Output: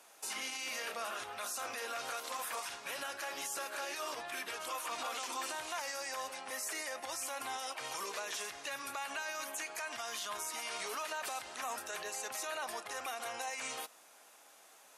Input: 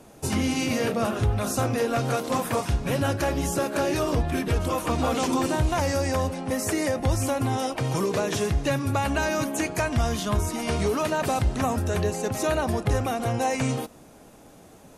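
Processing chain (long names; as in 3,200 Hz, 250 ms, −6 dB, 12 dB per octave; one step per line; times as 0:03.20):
high-pass filter 1,100 Hz 12 dB per octave
brickwall limiter −28 dBFS, peak gain reduction 11 dB
level −2.5 dB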